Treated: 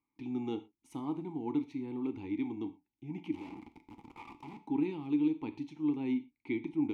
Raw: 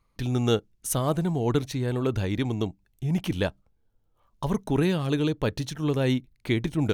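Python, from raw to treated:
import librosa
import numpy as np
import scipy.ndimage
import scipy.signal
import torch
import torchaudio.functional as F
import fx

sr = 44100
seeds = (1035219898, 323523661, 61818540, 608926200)

y = fx.clip_1bit(x, sr, at=(3.34, 4.57))
y = fx.vowel_filter(y, sr, vowel='u')
y = fx.rev_gated(y, sr, seeds[0], gate_ms=140, shape='falling', drr_db=8.5)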